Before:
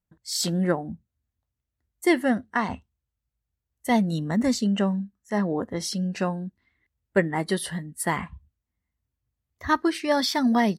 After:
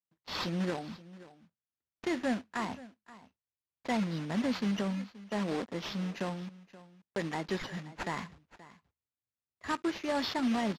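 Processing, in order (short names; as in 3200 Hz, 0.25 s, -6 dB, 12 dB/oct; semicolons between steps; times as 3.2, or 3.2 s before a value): block floating point 3-bit; gate -44 dBFS, range -10 dB; HPF 140 Hz 12 dB/oct; limiter -15 dBFS, peak gain reduction 8 dB; sample-and-hold 5×; air absorption 81 m; echo 0.527 s -18.5 dB; gain -7 dB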